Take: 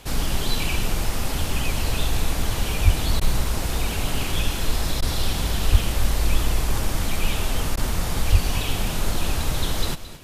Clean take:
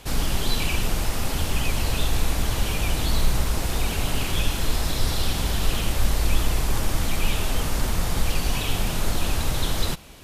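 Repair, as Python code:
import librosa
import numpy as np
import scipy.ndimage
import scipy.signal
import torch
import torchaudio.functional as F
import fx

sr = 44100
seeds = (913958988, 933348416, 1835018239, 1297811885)

y = fx.fix_declick_ar(x, sr, threshold=6.5)
y = fx.highpass(y, sr, hz=140.0, slope=24, at=(2.84, 2.96), fade=0.02)
y = fx.highpass(y, sr, hz=140.0, slope=24, at=(5.71, 5.83), fade=0.02)
y = fx.highpass(y, sr, hz=140.0, slope=24, at=(8.31, 8.43), fade=0.02)
y = fx.fix_interpolate(y, sr, at_s=(3.2, 5.01, 7.76), length_ms=11.0)
y = fx.fix_echo_inverse(y, sr, delay_ms=222, level_db=-14.5)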